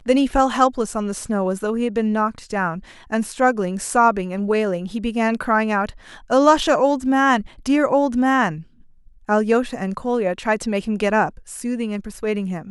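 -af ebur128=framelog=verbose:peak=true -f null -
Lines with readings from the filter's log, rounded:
Integrated loudness:
  I:         -20.1 LUFS
  Threshold: -30.3 LUFS
Loudness range:
  LRA:         3.8 LU
  Threshold: -40.1 LUFS
  LRA low:   -22.1 LUFS
  LRA high:  -18.3 LUFS
True peak:
  Peak:       -2.2 dBFS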